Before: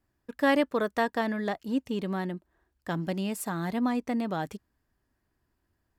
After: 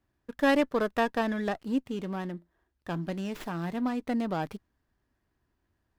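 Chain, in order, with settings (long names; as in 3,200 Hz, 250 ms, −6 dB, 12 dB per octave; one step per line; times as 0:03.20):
0:01.80–0:04.01: tuned comb filter 86 Hz, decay 0.23 s, harmonics all, mix 40%
windowed peak hold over 5 samples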